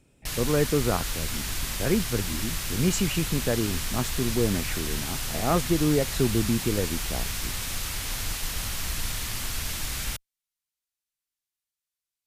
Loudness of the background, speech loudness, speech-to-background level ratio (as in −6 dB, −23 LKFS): −30.5 LKFS, −28.0 LKFS, 2.5 dB